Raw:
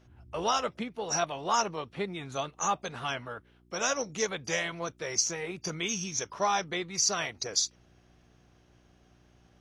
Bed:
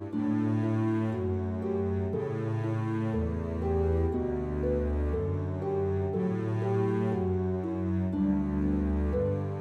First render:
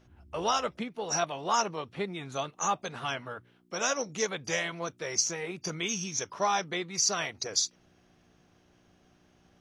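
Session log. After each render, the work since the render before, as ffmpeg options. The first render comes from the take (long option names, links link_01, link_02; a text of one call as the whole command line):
ffmpeg -i in.wav -af "bandreject=frequency=60:width_type=h:width=4,bandreject=frequency=120:width_type=h:width=4" out.wav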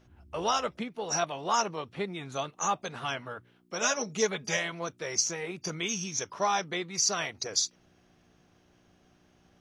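ffmpeg -i in.wav -filter_complex "[0:a]asettb=1/sr,asplit=3[link_01][link_02][link_03];[link_01]atrim=end=3.824[link_04];[link_02]atrim=start=3.82:end=4.57,asetpts=PTS-STARTPTS,afade=type=in:duration=0.004:curve=qsin,afade=type=out:start_time=0.746:duration=0.004:curve=qsin,aecho=1:1:4.8:0.72,atrim=end_sample=33075[link_05];[link_03]atrim=start=4.566[link_06];[link_04][link_05]acrossfade=duration=0.004:curve1=hsin:curve2=qsin[link_07];[link_07][link_06]acrossfade=duration=0.004:curve1=qsin:curve2=hsin" out.wav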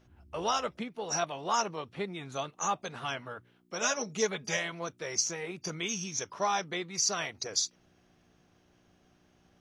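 ffmpeg -i in.wav -af "volume=-2dB" out.wav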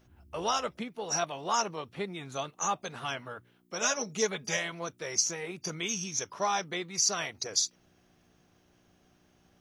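ffmpeg -i in.wav -af "highshelf=frequency=10000:gain=9.5" out.wav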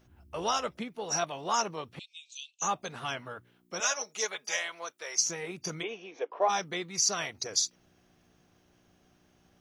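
ffmpeg -i in.wav -filter_complex "[0:a]asettb=1/sr,asplit=3[link_01][link_02][link_03];[link_01]atrim=end=1.994[link_04];[link_02]atrim=start=1.99:end=2.62,asetpts=PTS-STARTPTS,afade=type=in:duration=0.004:curve=qsin,afade=type=out:start_time=0.626:duration=0.004:curve=qsin,asuperpass=centerf=4800:order=20:qfactor=0.8[link_05];[link_03]atrim=start=2.616[link_06];[link_04][link_05]acrossfade=duration=0.004:curve1=hsin:curve2=qsin[link_07];[link_07][link_06]acrossfade=duration=0.004:curve1=qsin:curve2=hsin,asettb=1/sr,asplit=3[link_08][link_09][link_10];[link_08]atrim=end=3.804[link_11];[link_09]atrim=start=3.8:end=5.19,asetpts=PTS-STARTPTS,afade=type=in:duration=0.004:curve=qsin,afade=type=out:start_time=1.386:duration=0.004:curve=qsin,highpass=630[link_12];[link_10]atrim=start=5.186[link_13];[link_11][link_12]acrossfade=duration=0.004:curve1=hsin:curve2=qsin[link_14];[link_14][link_13]acrossfade=duration=0.004:curve1=qsin:curve2=hsin,asplit=3[link_15][link_16][link_17];[link_15]afade=type=out:start_time=5.82:duration=0.02[link_18];[link_16]highpass=frequency=320:width=0.5412,highpass=frequency=320:width=1.3066,equalizer=frequency=320:width_type=q:width=4:gain=3,equalizer=frequency=480:width_type=q:width=4:gain=10,equalizer=frequency=720:width_type=q:width=4:gain=9,equalizer=frequency=1400:width_type=q:width=4:gain=-6,equalizer=frequency=2000:width_type=q:width=4:gain=-3,lowpass=frequency=2700:width=0.5412,lowpass=frequency=2700:width=1.3066,afade=type=in:start_time=5.82:duration=0.02,afade=type=out:start_time=6.48:duration=0.02[link_19];[link_17]afade=type=in:start_time=6.48:duration=0.02[link_20];[link_18][link_19][link_20]amix=inputs=3:normalize=0" out.wav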